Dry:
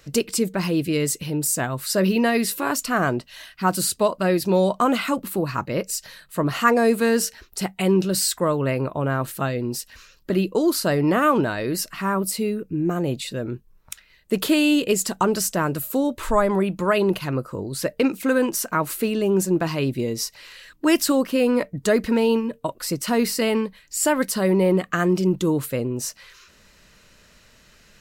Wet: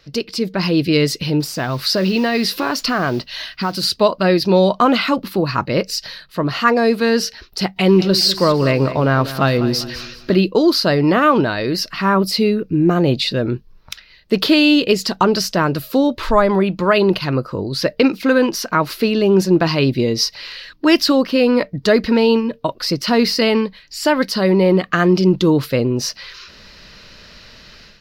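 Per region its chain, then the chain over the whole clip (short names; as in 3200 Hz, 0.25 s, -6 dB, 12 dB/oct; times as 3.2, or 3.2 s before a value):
1.4–3.83 compressor 3:1, threshold -26 dBFS + modulation noise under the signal 22 dB
7.76–10.34 G.711 law mismatch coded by mu + feedback echo 0.198 s, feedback 38%, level -14 dB
whole clip: resonant high shelf 6200 Hz -9.5 dB, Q 3; AGC; gain -1 dB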